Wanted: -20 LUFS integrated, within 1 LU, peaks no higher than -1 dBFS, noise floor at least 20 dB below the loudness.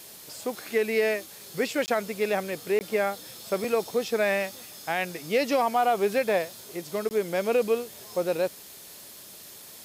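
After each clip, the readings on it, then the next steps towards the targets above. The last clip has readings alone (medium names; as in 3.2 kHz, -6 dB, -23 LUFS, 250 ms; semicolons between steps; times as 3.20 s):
dropouts 3; longest dropout 19 ms; noise floor -46 dBFS; noise floor target -48 dBFS; loudness -27.5 LUFS; peak level -13.0 dBFS; loudness target -20.0 LUFS
-> interpolate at 1.86/2.79/7.09 s, 19 ms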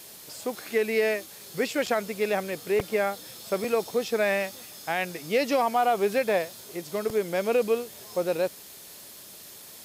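dropouts 0; noise floor -46 dBFS; noise floor target -48 dBFS
-> noise print and reduce 6 dB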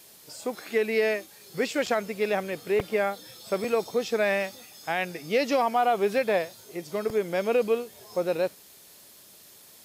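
noise floor -52 dBFS; loudness -27.5 LUFS; peak level -13.5 dBFS; loudness target -20.0 LUFS
-> trim +7.5 dB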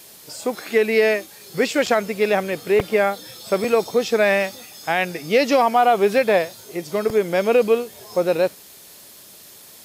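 loudness -20.0 LUFS; peak level -6.0 dBFS; noise floor -45 dBFS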